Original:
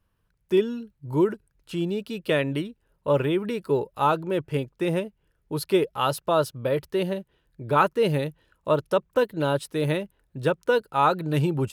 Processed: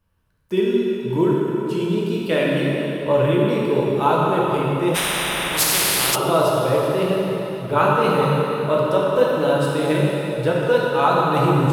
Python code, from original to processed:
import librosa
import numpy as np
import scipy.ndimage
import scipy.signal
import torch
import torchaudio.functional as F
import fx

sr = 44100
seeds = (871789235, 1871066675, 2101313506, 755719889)

y = fx.rev_plate(x, sr, seeds[0], rt60_s=3.7, hf_ratio=0.85, predelay_ms=0, drr_db=-5.0)
y = fx.spectral_comp(y, sr, ratio=10.0, at=(4.94, 6.14), fade=0.02)